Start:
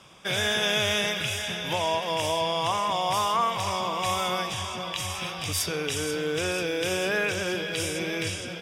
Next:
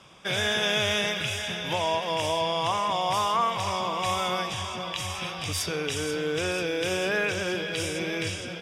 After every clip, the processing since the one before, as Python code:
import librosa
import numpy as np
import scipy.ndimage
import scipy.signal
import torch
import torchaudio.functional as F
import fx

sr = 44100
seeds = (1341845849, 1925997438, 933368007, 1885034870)

y = fx.high_shelf(x, sr, hz=11000.0, db=-10.0)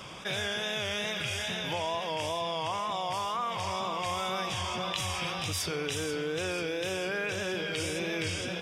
y = fx.rider(x, sr, range_db=10, speed_s=0.5)
y = fx.wow_flutter(y, sr, seeds[0], rate_hz=2.1, depth_cents=57.0)
y = fx.env_flatten(y, sr, amount_pct=50)
y = y * 10.0 ** (-6.5 / 20.0)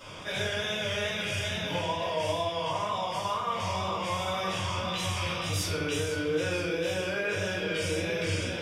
y = fx.room_shoebox(x, sr, seeds[1], volume_m3=150.0, walls='mixed', distance_m=2.6)
y = y * 10.0 ** (-8.0 / 20.0)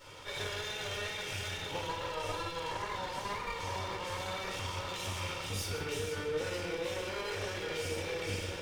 y = fx.lower_of_two(x, sr, delay_ms=2.2)
y = y + 10.0 ** (-12.5 / 20.0) * np.pad(y, (int(153 * sr / 1000.0), 0))[:len(y)]
y = y * 10.0 ** (-5.5 / 20.0)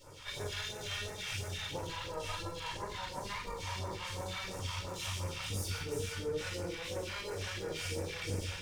y = fx.phaser_stages(x, sr, stages=2, low_hz=310.0, high_hz=3200.0, hz=2.9, feedback_pct=25)
y = fx.doubler(y, sr, ms=43.0, db=-11.5)